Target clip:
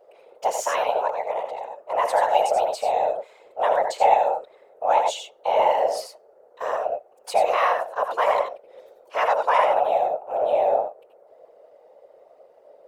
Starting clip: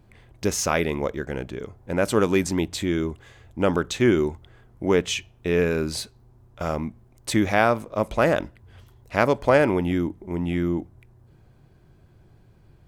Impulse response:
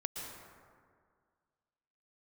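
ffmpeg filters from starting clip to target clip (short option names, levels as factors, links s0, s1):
-filter_complex "[0:a]afreqshift=430,highpass=f=600:t=q:w=3.6[s0];[1:a]atrim=start_sample=2205,atrim=end_sample=6615,asetrate=66150,aresample=44100[s1];[s0][s1]afir=irnorm=-1:irlink=0,afftfilt=real='hypot(re,im)*cos(2*PI*random(0))':imag='hypot(re,im)*sin(2*PI*random(1))':win_size=512:overlap=0.75,volume=1.78"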